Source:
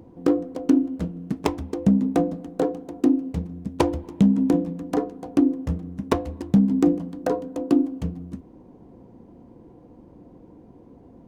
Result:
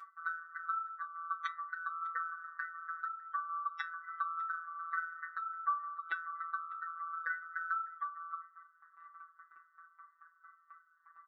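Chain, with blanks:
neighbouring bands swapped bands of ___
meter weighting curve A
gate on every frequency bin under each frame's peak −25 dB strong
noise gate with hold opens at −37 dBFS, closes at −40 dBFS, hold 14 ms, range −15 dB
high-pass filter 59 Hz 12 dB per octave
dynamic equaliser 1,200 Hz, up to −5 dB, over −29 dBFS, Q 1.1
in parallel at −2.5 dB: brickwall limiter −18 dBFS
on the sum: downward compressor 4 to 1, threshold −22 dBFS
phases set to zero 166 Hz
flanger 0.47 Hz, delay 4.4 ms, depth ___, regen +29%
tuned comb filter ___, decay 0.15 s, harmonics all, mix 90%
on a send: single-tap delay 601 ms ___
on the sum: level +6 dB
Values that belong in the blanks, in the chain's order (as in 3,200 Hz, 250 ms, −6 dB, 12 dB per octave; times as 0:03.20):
1,000 Hz, 1.2 ms, 380 Hz, −24 dB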